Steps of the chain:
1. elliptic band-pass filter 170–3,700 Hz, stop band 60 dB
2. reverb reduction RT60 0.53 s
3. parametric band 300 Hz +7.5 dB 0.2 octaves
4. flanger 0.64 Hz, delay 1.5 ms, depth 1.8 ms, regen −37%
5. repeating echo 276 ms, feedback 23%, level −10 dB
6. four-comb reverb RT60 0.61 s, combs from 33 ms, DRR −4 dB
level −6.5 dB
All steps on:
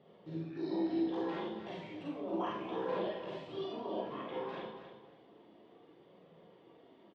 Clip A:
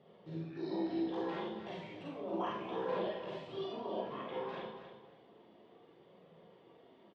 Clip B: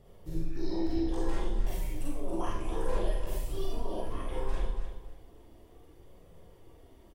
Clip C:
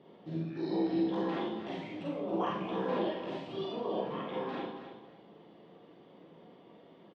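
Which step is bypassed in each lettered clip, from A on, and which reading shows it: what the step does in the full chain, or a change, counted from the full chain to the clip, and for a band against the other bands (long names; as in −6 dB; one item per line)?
3, 250 Hz band −2.5 dB
1, 125 Hz band +10.0 dB
4, 125 Hz band +3.0 dB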